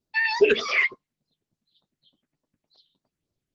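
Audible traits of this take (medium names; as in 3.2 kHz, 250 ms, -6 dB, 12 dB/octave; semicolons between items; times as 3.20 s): phasing stages 4, 3.4 Hz, lowest notch 800–2600 Hz; Opus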